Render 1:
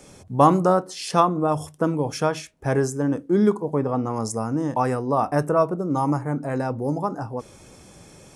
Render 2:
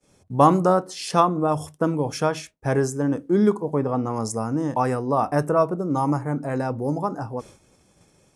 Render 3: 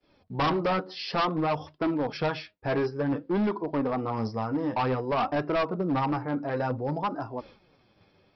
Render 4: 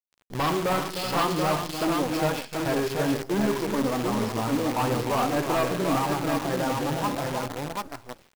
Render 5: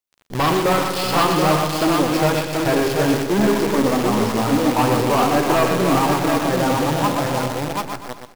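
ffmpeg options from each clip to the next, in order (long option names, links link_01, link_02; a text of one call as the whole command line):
ffmpeg -i in.wav -af "agate=range=-33dB:threshold=-38dB:ratio=3:detection=peak" out.wav
ffmpeg -i in.wav -af "flanger=delay=2.9:depth=7.6:regen=28:speed=0.55:shape=sinusoidal,lowshelf=frequency=420:gain=-4.5,aresample=11025,volume=25.5dB,asoftclip=hard,volume=-25.5dB,aresample=44100,volume=3dB" out.wav
ffmpeg -i in.wav -filter_complex "[0:a]asplit=2[link_01][link_02];[link_02]aecho=0:1:40|72|136|305|379|733:0.15|0.251|0.188|0.355|0.299|0.596[link_03];[link_01][link_03]amix=inputs=2:normalize=0,acrusher=bits=6:dc=4:mix=0:aa=0.000001" out.wav
ffmpeg -i in.wav -af "aecho=1:1:123|246|369|492|615:0.447|0.183|0.0751|0.0308|0.0126,volume=7dB" out.wav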